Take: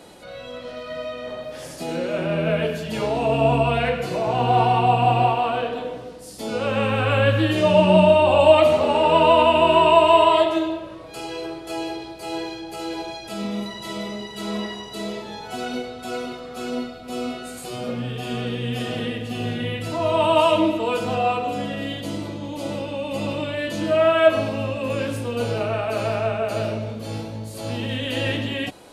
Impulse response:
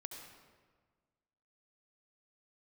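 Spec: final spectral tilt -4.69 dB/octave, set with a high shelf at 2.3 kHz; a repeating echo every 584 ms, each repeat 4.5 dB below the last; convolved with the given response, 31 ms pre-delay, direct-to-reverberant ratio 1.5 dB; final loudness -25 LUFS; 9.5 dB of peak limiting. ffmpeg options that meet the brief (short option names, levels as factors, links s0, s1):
-filter_complex "[0:a]highshelf=f=2300:g=-5,alimiter=limit=0.251:level=0:latency=1,aecho=1:1:584|1168|1752|2336|2920|3504|4088|4672|5256:0.596|0.357|0.214|0.129|0.0772|0.0463|0.0278|0.0167|0.01,asplit=2[s0][s1];[1:a]atrim=start_sample=2205,adelay=31[s2];[s1][s2]afir=irnorm=-1:irlink=0,volume=1.26[s3];[s0][s3]amix=inputs=2:normalize=0,volume=0.562"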